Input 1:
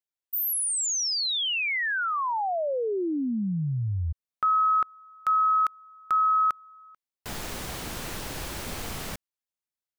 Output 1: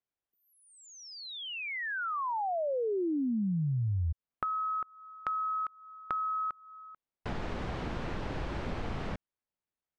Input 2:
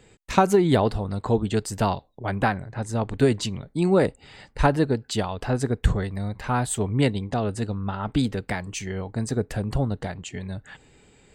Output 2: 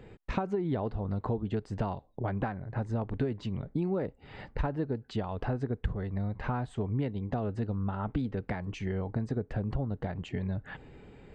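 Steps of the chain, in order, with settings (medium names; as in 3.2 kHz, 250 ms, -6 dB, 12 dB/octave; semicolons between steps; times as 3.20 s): compression 5:1, threshold -35 dBFS; tape spacing loss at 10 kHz 35 dB; trim +6 dB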